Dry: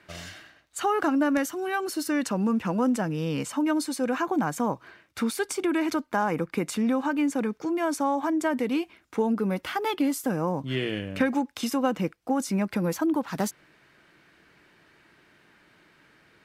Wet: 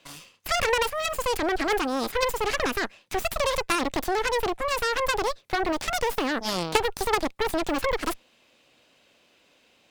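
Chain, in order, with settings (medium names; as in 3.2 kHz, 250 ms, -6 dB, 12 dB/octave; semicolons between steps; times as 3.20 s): wide varispeed 1.66×; Chebyshev shaper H 3 -8 dB, 5 -20 dB, 8 -20 dB, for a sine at -12.5 dBFS; trim +7.5 dB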